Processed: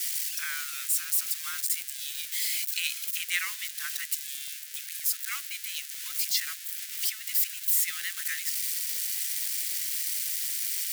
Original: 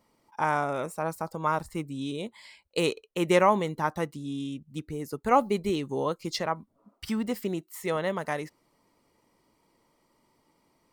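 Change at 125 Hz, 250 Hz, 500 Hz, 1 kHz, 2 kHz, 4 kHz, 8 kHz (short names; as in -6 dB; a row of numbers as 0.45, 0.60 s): under -40 dB, under -40 dB, under -40 dB, -21.0 dB, +1.5 dB, +7.5 dB, +17.5 dB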